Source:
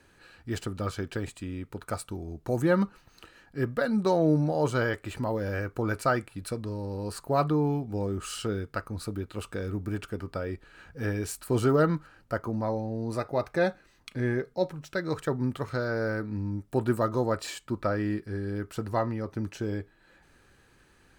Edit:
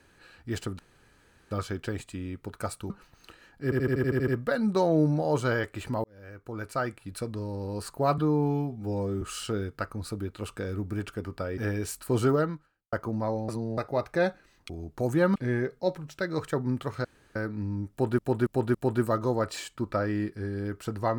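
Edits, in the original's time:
0.79 insert room tone 0.72 s
2.18–2.84 move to 14.1
3.58 stutter 0.08 s, 9 plays
5.34–6.61 fade in
7.48–8.17 stretch 1.5×
10.53–10.98 cut
11.7–12.33 fade out quadratic
12.89–13.18 reverse
15.79–16.1 room tone
16.65–16.93 loop, 4 plays

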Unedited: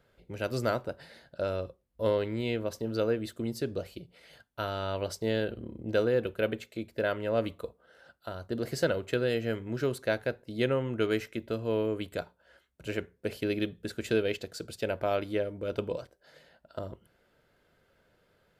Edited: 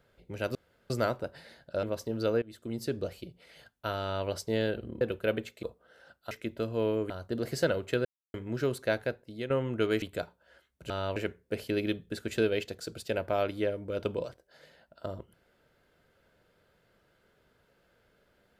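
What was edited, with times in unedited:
0.55 insert room tone 0.35 s
1.48–2.57 cut
3.16–3.59 fade in, from -20.5 dB
4.75–5.01 copy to 12.89
5.75–6.16 cut
6.78–7.62 cut
9.25–9.54 mute
10.22–10.7 fade out, to -11.5 dB
11.22–12.01 move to 8.3

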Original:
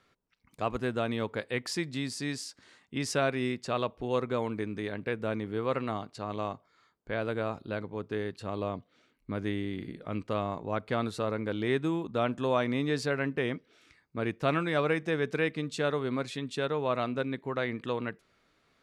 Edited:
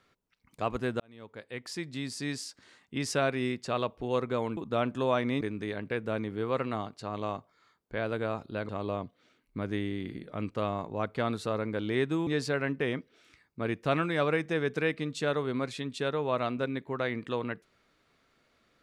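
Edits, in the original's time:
1–2.32 fade in
7.85–8.42 cut
12–12.84 move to 4.57

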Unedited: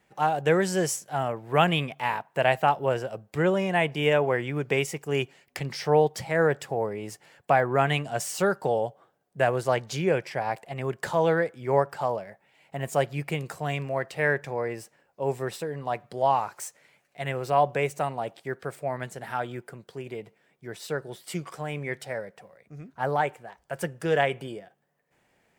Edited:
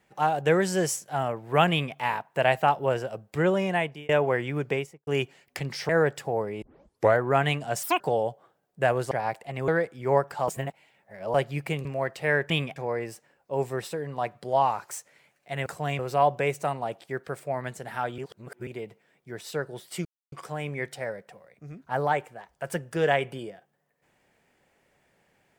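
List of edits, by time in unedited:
1.71–1.97 copy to 14.45
3.69–4.09 fade out
4.61–5.07 studio fade out
5.89–6.33 cut
7.06 tape start 0.58 s
8.27–8.58 speed 181%
9.69–10.33 cut
10.9–11.3 cut
12.1–12.96 reverse
13.47–13.8 move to 17.35
19.54–20.03 reverse
21.41 insert silence 0.27 s

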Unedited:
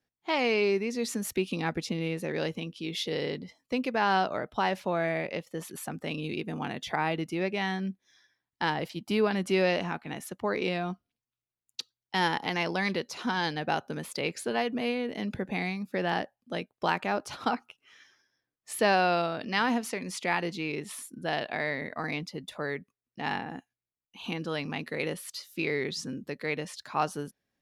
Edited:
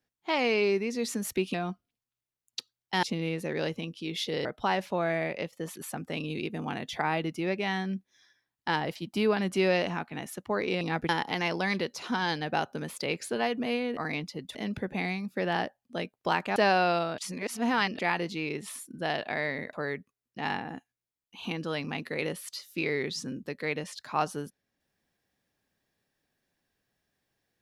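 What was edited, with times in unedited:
1.54–1.82 swap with 10.75–12.24
3.24–4.39 cut
17.13–18.79 cut
19.41–20.22 reverse
21.96–22.54 move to 15.12

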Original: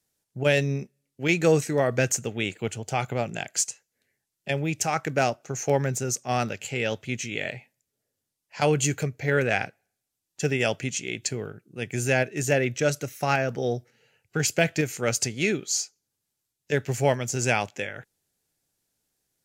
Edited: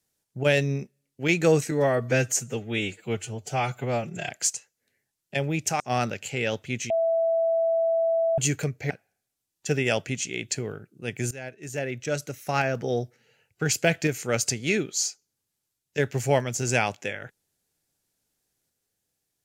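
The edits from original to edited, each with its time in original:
1.71–3.43 stretch 1.5×
4.94–6.19 cut
7.29–8.77 bleep 660 Hz -20 dBFS
9.29–9.64 cut
12.05–13.54 fade in, from -19.5 dB

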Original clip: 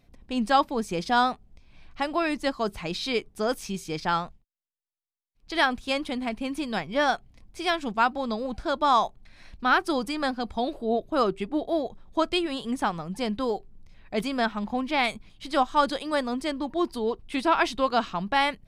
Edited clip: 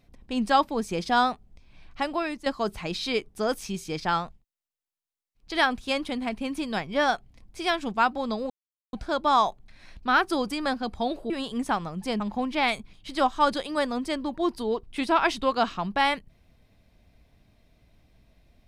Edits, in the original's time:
2.05–2.46 fade out, to -10 dB
8.5 insert silence 0.43 s
10.87–12.43 cut
13.33–14.56 cut

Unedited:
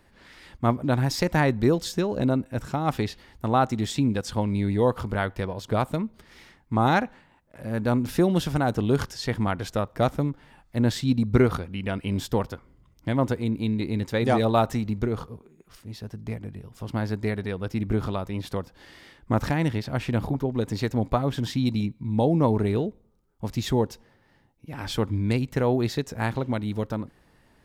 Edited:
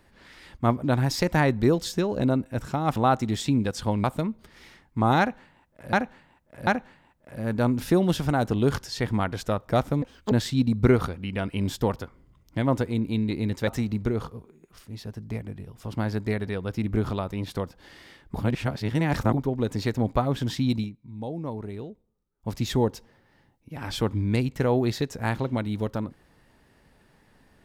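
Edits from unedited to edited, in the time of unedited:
2.96–3.46 cut
4.54–5.79 cut
6.94–7.68 loop, 3 plays
10.29–10.82 speed 180%
14.18–14.64 cut
19.31–20.29 reverse
21.74–23.45 dip -12 dB, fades 0.12 s

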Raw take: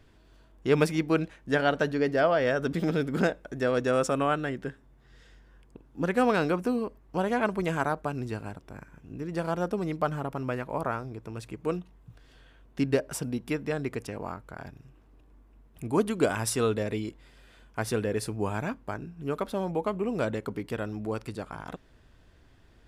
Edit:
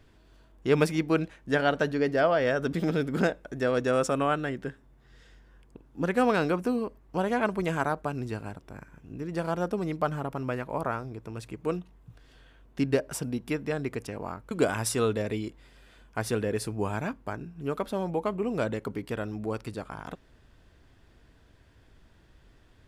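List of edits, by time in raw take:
14.51–16.12 cut

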